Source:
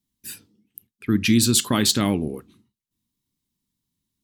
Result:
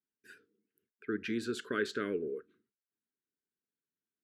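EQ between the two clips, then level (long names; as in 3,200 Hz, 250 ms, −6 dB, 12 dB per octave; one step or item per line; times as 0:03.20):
pair of resonant band-passes 810 Hz, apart 1.8 octaves
0.0 dB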